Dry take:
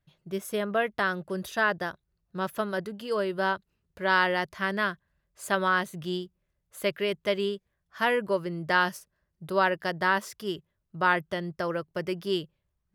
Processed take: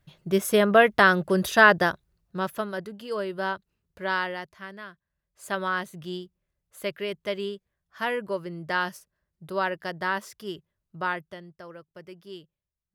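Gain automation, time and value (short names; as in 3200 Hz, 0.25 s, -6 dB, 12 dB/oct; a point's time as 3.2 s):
1.88 s +9.5 dB
2.73 s -2 dB
4.03 s -2 dB
4.85 s -14.5 dB
5.52 s -3 dB
10.98 s -3 dB
11.54 s -13.5 dB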